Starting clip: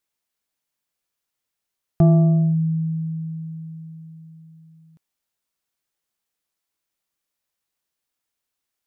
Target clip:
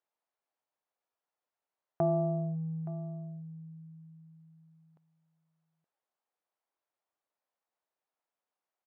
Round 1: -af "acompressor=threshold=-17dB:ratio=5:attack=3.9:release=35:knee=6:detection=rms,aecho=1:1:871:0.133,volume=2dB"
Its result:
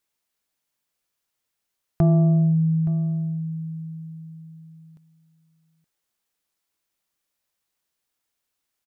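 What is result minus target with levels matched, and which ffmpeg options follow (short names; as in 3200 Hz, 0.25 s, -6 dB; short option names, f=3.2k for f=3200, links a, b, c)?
1000 Hz band -12.0 dB
-af "acompressor=threshold=-17dB:ratio=5:attack=3.9:release=35:knee=6:detection=rms,bandpass=f=730:t=q:w=1.4:csg=0,aecho=1:1:871:0.133,volume=2dB"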